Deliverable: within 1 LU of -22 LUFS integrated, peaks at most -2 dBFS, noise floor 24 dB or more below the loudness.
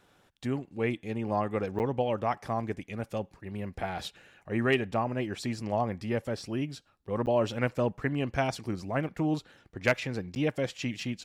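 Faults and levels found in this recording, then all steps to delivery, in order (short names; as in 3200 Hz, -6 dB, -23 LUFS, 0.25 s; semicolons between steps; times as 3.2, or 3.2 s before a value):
dropouts 3; longest dropout 9.2 ms; loudness -31.5 LUFS; peak -13.0 dBFS; loudness target -22.0 LUFS
-> interpolate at 1.79/7.26/10.35, 9.2 ms; gain +9.5 dB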